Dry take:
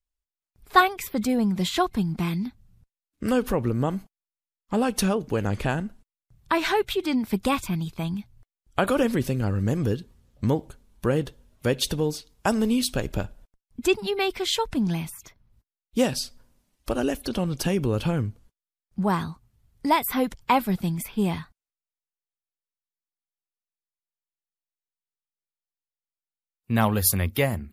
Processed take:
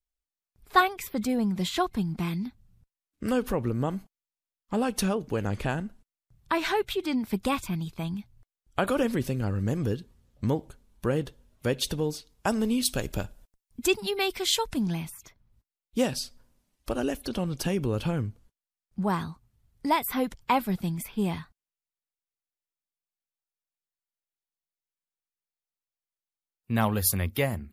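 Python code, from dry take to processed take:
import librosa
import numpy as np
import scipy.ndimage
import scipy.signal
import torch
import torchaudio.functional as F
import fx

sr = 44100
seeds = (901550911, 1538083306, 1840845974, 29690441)

y = fx.high_shelf(x, sr, hz=4300.0, db=9.0, at=(12.85, 14.86))
y = y * librosa.db_to_amplitude(-3.5)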